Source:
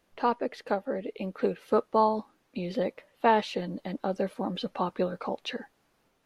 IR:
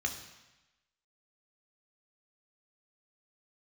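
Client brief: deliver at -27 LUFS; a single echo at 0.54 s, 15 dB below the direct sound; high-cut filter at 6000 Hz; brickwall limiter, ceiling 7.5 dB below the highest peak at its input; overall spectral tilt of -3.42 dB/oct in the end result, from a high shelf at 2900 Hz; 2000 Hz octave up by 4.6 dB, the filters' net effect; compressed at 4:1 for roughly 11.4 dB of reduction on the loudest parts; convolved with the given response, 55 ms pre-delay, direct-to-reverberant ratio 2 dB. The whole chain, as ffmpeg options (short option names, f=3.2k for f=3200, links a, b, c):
-filter_complex "[0:a]lowpass=6k,equalizer=f=2k:t=o:g=3.5,highshelf=f=2.9k:g=6.5,acompressor=threshold=-30dB:ratio=4,alimiter=limit=-24dB:level=0:latency=1,aecho=1:1:540:0.178,asplit=2[a][b];[1:a]atrim=start_sample=2205,adelay=55[c];[b][c]afir=irnorm=-1:irlink=0,volume=-6dB[d];[a][d]amix=inputs=2:normalize=0,volume=8.5dB"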